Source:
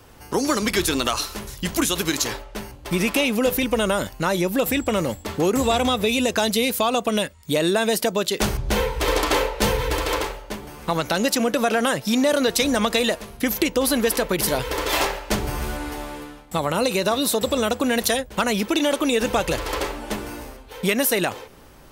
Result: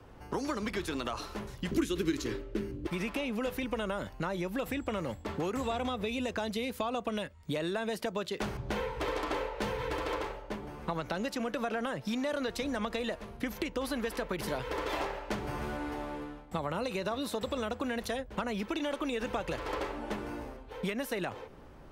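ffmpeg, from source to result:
-filter_complex "[0:a]asettb=1/sr,asplit=3[s0][s1][s2];[s0]atrim=end=1.714[s3];[s1]atrim=start=1.71:end=2.87,asetpts=PTS-STARTPTS,afade=t=in:d=0.004:c=qsin,afade=t=out:st=1.156:d=0.004:c=qsin,lowshelf=f=530:t=q:w=3:g=14[s4];[s2]atrim=start=2.866[s5];[s3][s4]acrossfade=d=0.004:c1=hsin:c2=qsin[s6];[s6][s5]acrossfade=d=0.004:c1=qsin:c2=hsin,lowpass=f=1300:p=1,acrossover=split=92|980[s7][s8][s9];[s7]acompressor=threshold=0.00631:ratio=4[s10];[s8]acompressor=threshold=0.0282:ratio=4[s11];[s9]acompressor=threshold=0.02:ratio=4[s12];[s10][s11][s12]amix=inputs=3:normalize=0,volume=0.668"

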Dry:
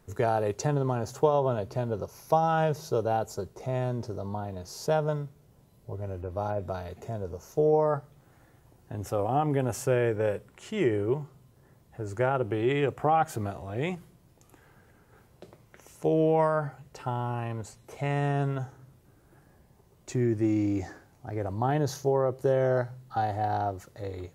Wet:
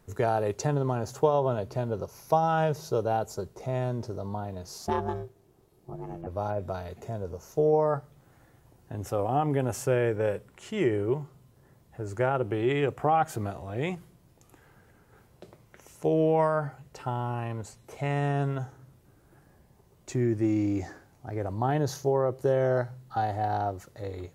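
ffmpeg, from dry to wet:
-filter_complex "[0:a]asettb=1/sr,asplit=3[s0][s1][s2];[s0]atrim=end=4.784[s3];[s1]atrim=start=4.78:end=6.27,asetpts=PTS-STARTPTS,afade=t=in:d=0.004:c=qsin,afade=t=out:st=1.486:d=0.004:c=qsin,aeval=exprs='val(0)*sin(2*PI*250*n/s)':c=same[s4];[s2]atrim=start=6.266[s5];[s3][s4]acrossfade=d=0.004:c1=hsin:c2=qsin[s6];[s6][s5]acrossfade=d=0.004:c1=qsin:c2=hsin"

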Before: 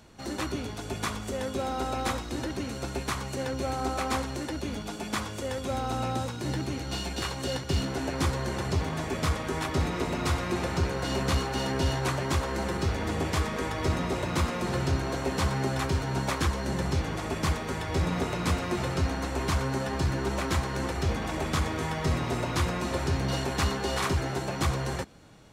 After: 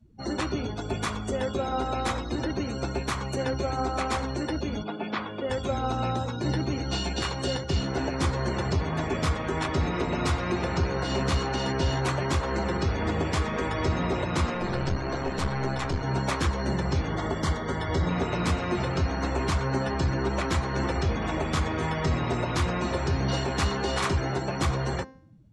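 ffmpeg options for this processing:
-filter_complex "[0:a]asettb=1/sr,asplit=3[s0][s1][s2];[s0]atrim=end=4.834[s3];[s1]atrim=start=4.83:end=5.5,asetpts=PTS-STARTPTS,afade=t=in:d=0.004:c=qsin,afade=t=out:st=0.666:d=0.004:c=qsin,highpass=170,lowpass=3900[s4];[s2]atrim=start=5.496[s5];[s3][s4]acrossfade=d=0.004:c1=hsin:c2=qsin[s6];[s6][s5]acrossfade=d=0.004:c1=qsin:c2=hsin,asettb=1/sr,asplit=3[s7][s8][s9];[s7]atrim=end=14.544[s10];[s8]atrim=start=14.54:end=16.04,asetpts=PTS-STARTPTS,afade=t=in:d=0.004:c=qsin,afade=t=out:st=1.496:d=0.004:c=qsin,aeval=exprs='clip(val(0),-1,0.0188)':c=same[s11];[s9]atrim=start=16.036[s12];[s10][s11]acrossfade=d=0.004:c1=hsin:c2=qsin[s13];[s13][s12]acrossfade=d=0.004:c1=qsin:c2=hsin,asettb=1/sr,asplit=3[s14][s15][s16];[s14]atrim=end=17.084[s17];[s15]atrim=start=17.08:end=18.09,asetpts=PTS-STARTPTS,afade=t=in:d=0.004:c=qsin,afade=t=out:st=1.006:d=0.004:c=qsin,asuperstop=centerf=2500:order=4:qfactor=5.7[s18];[s16]atrim=start=18.086[s19];[s17][s18]acrossfade=d=0.004:c1=hsin:c2=qsin[s20];[s20][s19]acrossfade=d=0.004:c1=qsin:c2=hsin,afftdn=nr=29:nf=-44,alimiter=limit=0.0794:level=0:latency=1:release=240,bandreject=f=263.2:t=h:w=4,bandreject=f=526.4:t=h:w=4,bandreject=f=789.6:t=h:w=4,bandreject=f=1052.8:t=h:w=4,bandreject=f=1316:t=h:w=4,bandreject=f=1579.2:t=h:w=4,bandreject=f=1842.4:t=h:w=4,bandreject=f=2105.6:t=h:w=4,bandreject=f=2368.8:t=h:w=4,bandreject=f=2632:t=h:w=4,bandreject=f=2895.2:t=h:w=4,bandreject=f=3158.4:t=h:w=4,bandreject=f=3421.6:t=h:w=4,bandreject=f=3684.8:t=h:w=4,bandreject=f=3948:t=h:w=4,bandreject=f=4211.2:t=h:w=4,bandreject=f=4474.4:t=h:w=4,bandreject=f=4737.6:t=h:w=4,bandreject=f=5000.8:t=h:w=4,bandreject=f=5264:t=h:w=4,bandreject=f=5527.2:t=h:w=4,bandreject=f=5790.4:t=h:w=4,bandreject=f=6053.6:t=h:w=4,bandreject=f=6316.8:t=h:w=4,bandreject=f=6580:t=h:w=4,volume=1.68"

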